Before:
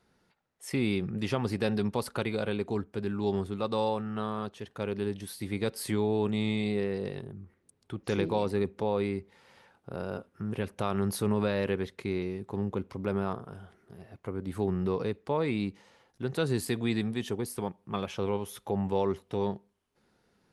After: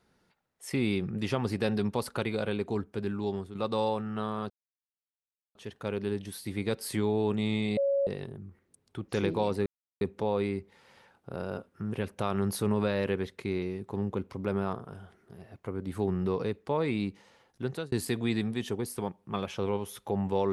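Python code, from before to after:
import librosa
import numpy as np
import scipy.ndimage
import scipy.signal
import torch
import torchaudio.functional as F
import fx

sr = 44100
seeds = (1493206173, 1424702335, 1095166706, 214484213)

y = fx.edit(x, sr, fx.fade_out_to(start_s=3.08, length_s=0.47, floor_db=-9.5),
    fx.insert_silence(at_s=4.5, length_s=1.05),
    fx.bleep(start_s=6.72, length_s=0.3, hz=556.0, db=-23.5),
    fx.insert_silence(at_s=8.61, length_s=0.35),
    fx.fade_out_span(start_s=16.27, length_s=0.25), tone=tone)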